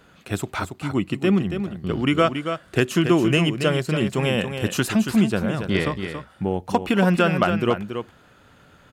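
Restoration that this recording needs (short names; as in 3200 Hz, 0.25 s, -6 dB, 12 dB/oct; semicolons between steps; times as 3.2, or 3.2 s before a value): inverse comb 0.279 s -8 dB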